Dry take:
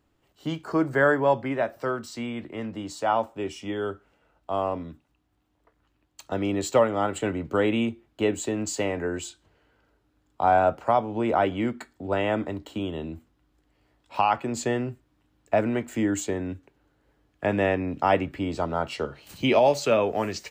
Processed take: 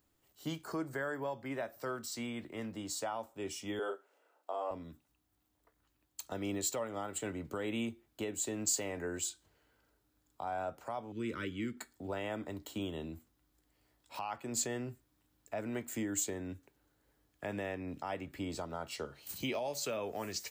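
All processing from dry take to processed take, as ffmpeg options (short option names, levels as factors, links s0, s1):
-filter_complex "[0:a]asettb=1/sr,asplit=3[s0][s1][s2];[s0]atrim=end=3.794[s3];[s1]atrim=start=3.79:end=4.71,asetpts=PTS-STARTPTS,afade=t=in:d=0.004:c=qsin,afade=t=out:st=0.916:d=0.004:c=qsin,highpass=f=400:w=0.5412,highpass=f=400:w=1.3066,tiltshelf=f=1300:g=5,asplit=2[s4][s5];[s5]adelay=35,volume=0.708[s6];[s4][s6]amix=inputs=2:normalize=0,atrim=end_sample=40572[s7];[s2]atrim=start=4.706[s8];[s3][s7]acrossfade=d=0.004:c1=hsin:c2=qsin[s9];[s9][s8]acrossfade=d=0.004:c1=qsin:c2=hsin,asettb=1/sr,asplit=3[s10][s11][s12];[s10]atrim=end=11.124[s13];[s11]atrim=start=11.12:end=11.77,asetpts=PTS-STARTPTS,afade=t=in:d=0.004:c=qsin,afade=t=out:st=0.646:d=0.004:c=qsin,asuperstop=centerf=750:order=4:qfactor=0.71,highshelf=f=8300:g=-6.5[s14];[s12]atrim=start=11.766[s15];[s13][s14]acrossfade=d=0.004:c1=hsin:c2=qsin[s16];[s16][s15]acrossfade=d=0.004:c1=qsin:c2=hsin,equalizer=f=2800:t=o:w=0.39:g=-3,alimiter=limit=0.0944:level=0:latency=1:release=328,aemphasis=mode=production:type=75kf,volume=0.376"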